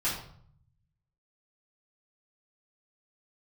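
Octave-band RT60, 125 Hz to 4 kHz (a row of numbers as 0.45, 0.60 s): 1.4, 0.95, 0.60, 0.60, 0.45, 0.45 s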